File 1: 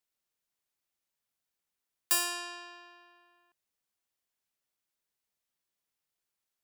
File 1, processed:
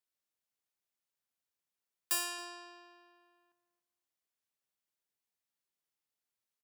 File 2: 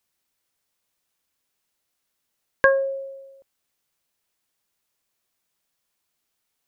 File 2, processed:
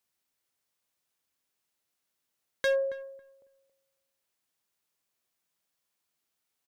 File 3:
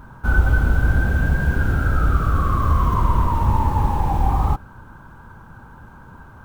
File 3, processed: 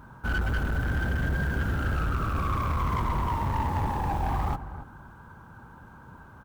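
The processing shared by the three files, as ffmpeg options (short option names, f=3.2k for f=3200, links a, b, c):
-filter_complex "[0:a]highpass=f=63:p=1,volume=18.5dB,asoftclip=hard,volume=-18.5dB,asplit=2[a][b];[b]adelay=275,lowpass=f=950:p=1,volume=-11dB,asplit=2[c][d];[d]adelay=275,lowpass=f=950:p=1,volume=0.23,asplit=2[e][f];[f]adelay=275,lowpass=f=950:p=1,volume=0.23[g];[a][c][e][g]amix=inputs=4:normalize=0,volume=-5dB"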